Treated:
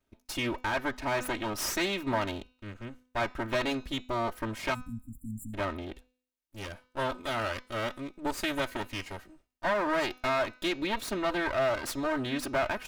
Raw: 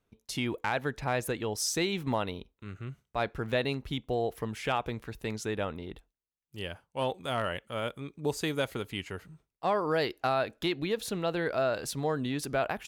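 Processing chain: minimum comb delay 3.2 ms; in parallel at -2 dB: limiter -26.5 dBFS, peak gain reduction 8 dB; on the sum: spectral delete 4.74–5.54, 290–7100 Hz; de-hum 251.9 Hz, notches 29; dynamic EQ 1400 Hz, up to +5 dB, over -41 dBFS, Q 0.76; gain -4 dB

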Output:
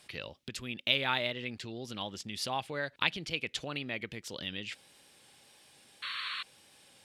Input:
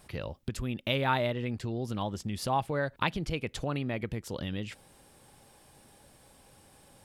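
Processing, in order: weighting filter D; wow and flutter 29 cents; painted sound noise, 6.02–6.43, 1000–4500 Hz -32 dBFS; gain -6 dB

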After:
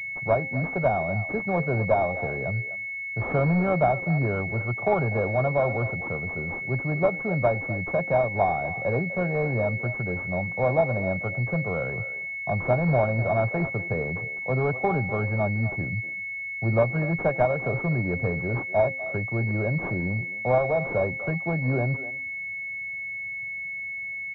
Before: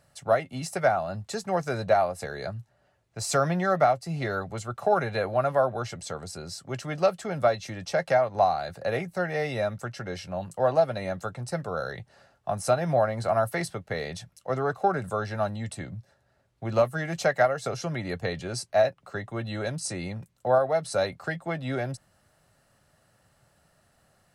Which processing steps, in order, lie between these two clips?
bell 120 Hz +6 dB 1.7 oct; de-hum 265.2 Hz, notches 3; in parallel at -9.5 dB: wrapped overs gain 19.5 dB; on the sum: speakerphone echo 0.25 s, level -13 dB; pulse-width modulation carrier 2200 Hz

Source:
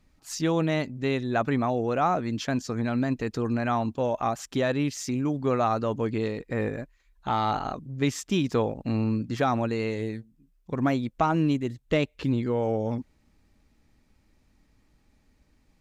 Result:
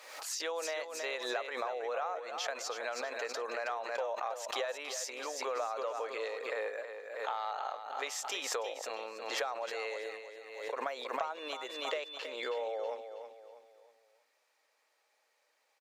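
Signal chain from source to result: elliptic high-pass 500 Hz, stop band 80 dB; compressor 6:1, threshold -33 dBFS, peak gain reduction 13 dB; 11.37–12.62 whine 3500 Hz -50 dBFS; feedback echo 0.321 s, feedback 40%, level -9 dB; backwards sustainer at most 54 dB/s; gain -1 dB

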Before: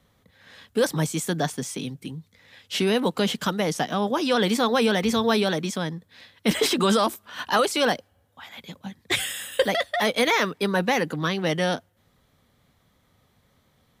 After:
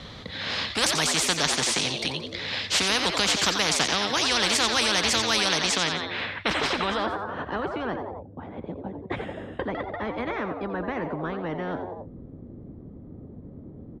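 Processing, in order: low-pass sweep 4200 Hz -> 320 Hz, 5.65–7.68; frequency-shifting echo 88 ms, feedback 34%, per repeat +93 Hz, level -12 dB; spectral compressor 4:1

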